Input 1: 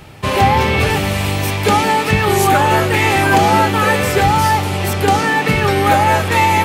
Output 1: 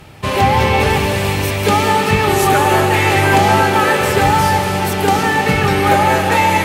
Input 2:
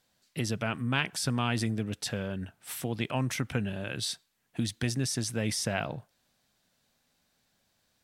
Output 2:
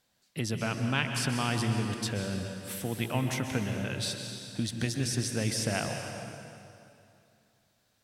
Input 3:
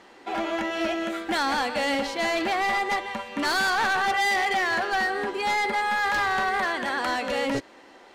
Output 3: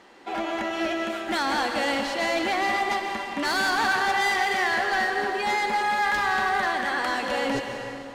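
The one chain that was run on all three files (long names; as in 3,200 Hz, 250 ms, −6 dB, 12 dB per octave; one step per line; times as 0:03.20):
harmonic generator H 2 −33 dB, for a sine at −2.5 dBFS
dense smooth reverb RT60 2.6 s, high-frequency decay 0.85×, pre-delay 115 ms, DRR 4 dB
level −1 dB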